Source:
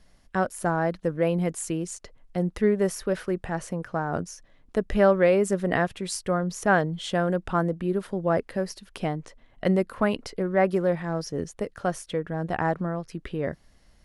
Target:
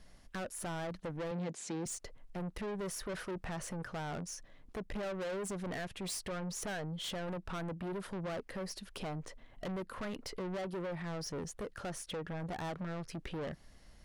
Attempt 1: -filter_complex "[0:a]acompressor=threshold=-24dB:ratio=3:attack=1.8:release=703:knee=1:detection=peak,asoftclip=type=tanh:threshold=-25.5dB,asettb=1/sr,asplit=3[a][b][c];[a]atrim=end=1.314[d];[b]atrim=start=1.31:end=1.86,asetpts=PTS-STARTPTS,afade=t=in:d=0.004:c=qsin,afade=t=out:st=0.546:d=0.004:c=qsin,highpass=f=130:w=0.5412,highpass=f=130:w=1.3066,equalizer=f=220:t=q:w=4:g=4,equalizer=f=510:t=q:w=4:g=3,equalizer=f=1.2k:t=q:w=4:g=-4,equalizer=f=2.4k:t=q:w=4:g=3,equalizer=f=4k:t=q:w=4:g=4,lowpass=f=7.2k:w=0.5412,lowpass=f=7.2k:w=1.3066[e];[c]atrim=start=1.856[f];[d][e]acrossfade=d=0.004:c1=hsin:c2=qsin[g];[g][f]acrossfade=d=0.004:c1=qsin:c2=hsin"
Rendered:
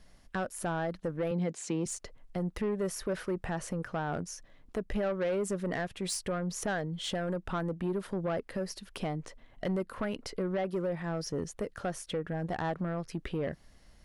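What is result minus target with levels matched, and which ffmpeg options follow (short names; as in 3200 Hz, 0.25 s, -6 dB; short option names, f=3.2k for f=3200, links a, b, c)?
soft clip: distortion -9 dB
-filter_complex "[0:a]acompressor=threshold=-24dB:ratio=3:attack=1.8:release=703:knee=1:detection=peak,asoftclip=type=tanh:threshold=-36.5dB,asettb=1/sr,asplit=3[a][b][c];[a]atrim=end=1.314[d];[b]atrim=start=1.31:end=1.86,asetpts=PTS-STARTPTS,afade=t=in:d=0.004:c=qsin,afade=t=out:st=0.546:d=0.004:c=qsin,highpass=f=130:w=0.5412,highpass=f=130:w=1.3066,equalizer=f=220:t=q:w=4:g=4,equalizer=f=510:t=q:w=4:g=3,equalizer=f=1.2k:t=q:w=4:g=-4,equalizer=f=2.4k:t=q:w=4:g=3,equalizer=f=4k:t=q:w=4:g=4,lowpass=f=7.2k:w=0.5412,lowpass=f=7.2k:w=1.3066[e];[c]atrim=start=1.856[f];[d][e]acrossfade=d=0.004:c1=hsin:c2=qsin[g];[g][f]acrossfade=d=0.004:c1=qsin:c2=hsin"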